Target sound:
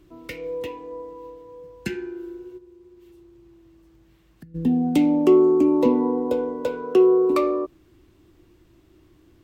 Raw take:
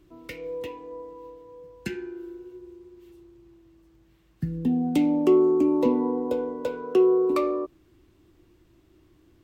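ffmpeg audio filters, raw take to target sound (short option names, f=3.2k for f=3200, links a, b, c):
-filter_complex "[0:a]asplit=3[a][b][c];[a]afade=t=out:st=2.57:d=0.02[d];[b]acompressor=threshold=-51dB:ratio=4,afade=t=in:st=2.57:d=0.02,afade=t=out:st=4.54:d=0.02[e];[c]afade=t=in:st=4.54:d=0.02[f];[d][e][f]amix=inputs=3:normalize=0,volume=3.5dB"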